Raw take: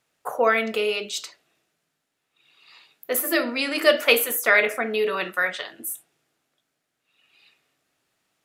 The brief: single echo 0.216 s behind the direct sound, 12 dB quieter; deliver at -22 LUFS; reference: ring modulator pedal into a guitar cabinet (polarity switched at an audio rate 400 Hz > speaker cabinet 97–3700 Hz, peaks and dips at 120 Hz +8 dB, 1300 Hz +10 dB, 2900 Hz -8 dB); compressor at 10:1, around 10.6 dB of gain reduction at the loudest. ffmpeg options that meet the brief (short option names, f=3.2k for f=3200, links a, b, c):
-af "acompressor=threshold=-22dB:ratio=10,aecho=1:1:216:0.251,aeval=exprs='val(0)*sgn(sin(2*PI*400*n/s))':c=same,highpass=97,equalizer=f=120:t=q:w=4:g=8,equalizer=f=1.3k:t=q:w=4:g=10,equalizer=f=2.9k:t=q:w=4:g=-8,lowpass=f=3.7k:w=0.5412,lowpass=f=3.7k:w=1.3066,volume=5dB"